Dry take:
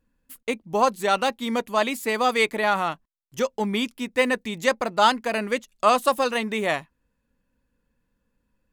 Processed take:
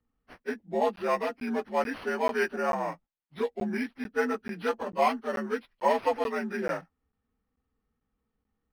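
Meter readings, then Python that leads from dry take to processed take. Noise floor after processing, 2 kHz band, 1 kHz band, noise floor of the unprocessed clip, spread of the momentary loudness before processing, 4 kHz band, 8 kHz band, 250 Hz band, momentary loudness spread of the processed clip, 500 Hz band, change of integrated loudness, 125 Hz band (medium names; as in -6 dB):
-82 dBFS, -8.0 dB, -7.0 dB, -75 dBFS, 9 LU, -15.5 dB, -15.0 dB, -5.0 dB, 8 LU, -4.5 dB, -6.5 dB, -6.5 dB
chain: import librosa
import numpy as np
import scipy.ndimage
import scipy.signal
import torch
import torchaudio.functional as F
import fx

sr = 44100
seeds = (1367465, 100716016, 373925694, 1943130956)

y = fx.partial_stretch(x, sr, pct=85)
y = fx.buffer_crackle(y, sr, first_s=0.96, period_s=0.44, block=512, kind='zero')
y = np.interp(np.arange(len(y)), np.arange(len(y))[::6], y[::6])
y = F.gain(torch.from_numpy(y), -4.0).numpy()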